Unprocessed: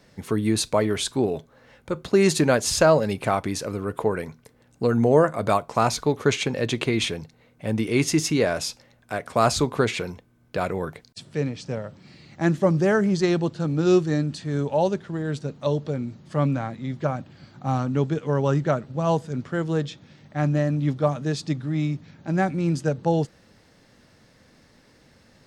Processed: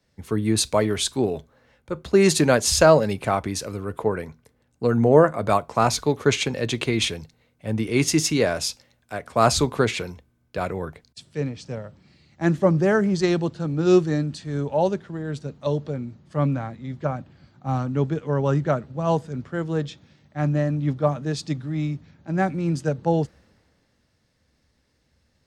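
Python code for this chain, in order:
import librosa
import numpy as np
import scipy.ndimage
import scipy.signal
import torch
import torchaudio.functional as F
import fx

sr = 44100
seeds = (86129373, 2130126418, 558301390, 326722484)

y = fx.peak_eq(x, sr, hz=69.0, db=11.5, octaves=0.38)
y = fx.band_widen(y, sr, depth_pct=40)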